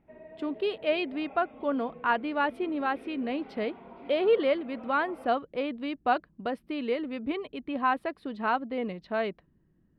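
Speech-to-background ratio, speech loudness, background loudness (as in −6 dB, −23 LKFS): 18.0 dB, −30.5 LKFS, −48.5 LKFS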